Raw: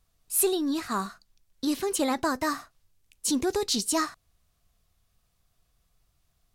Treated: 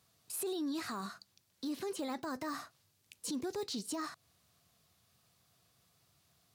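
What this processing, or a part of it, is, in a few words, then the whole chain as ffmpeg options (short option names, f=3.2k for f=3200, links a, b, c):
broadcast voice chain: -af "highpass=f=99:w=0.5412,highpass=f=99:w=1.3066,deesser=0.95,acompressor=threshold=-37dB:ratio=5,equalizer=f=4.4k:t=o:w=0.6:g=3,alimiter=level_in=10.5dB:limit=-24dB:level=0:latency=1:release=23,volume=-10.5dB,volume=3.5dB"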